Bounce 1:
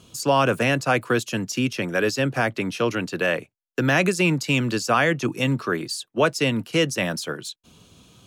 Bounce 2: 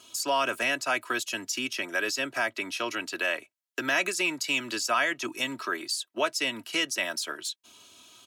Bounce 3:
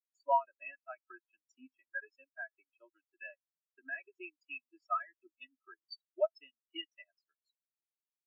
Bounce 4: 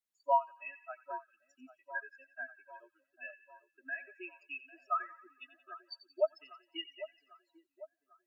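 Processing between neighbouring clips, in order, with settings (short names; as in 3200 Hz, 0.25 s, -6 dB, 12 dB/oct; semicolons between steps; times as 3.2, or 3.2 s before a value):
HPF 1200 Hz 6 dB/oct; comb 3.1 ms, depth 63%; in parallel at +2 dB: compressor, threshold -34 dBFS, peak gain reduction 16 dB; on the sum: gain -5.5 dB
transient shaper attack +3 dB, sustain -8 dB; resonator 130 Hz, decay 1.6 s, mix 50%; spectral expander 4:1; gain -1.5 dB
split-band echo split 1300 Hz, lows 0.798 s, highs 89 ms, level -14 dB; gain +1 dB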